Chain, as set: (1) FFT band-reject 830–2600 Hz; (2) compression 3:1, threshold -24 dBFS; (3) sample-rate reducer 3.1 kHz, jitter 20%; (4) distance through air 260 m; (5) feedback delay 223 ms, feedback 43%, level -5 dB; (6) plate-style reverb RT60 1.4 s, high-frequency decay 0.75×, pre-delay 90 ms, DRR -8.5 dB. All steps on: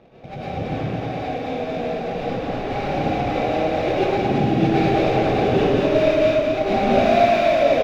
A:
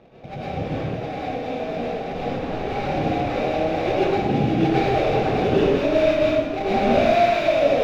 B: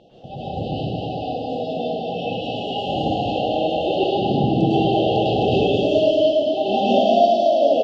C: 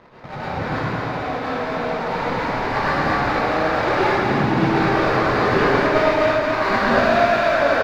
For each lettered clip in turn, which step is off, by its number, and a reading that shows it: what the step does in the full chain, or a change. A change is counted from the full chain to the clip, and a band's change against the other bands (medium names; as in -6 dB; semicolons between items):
5, echo-to-direct 10.0 dB to 8.5 dB; 3, 2 kHz band -8.5 dB; 1, 2 kHz band +9.0 dB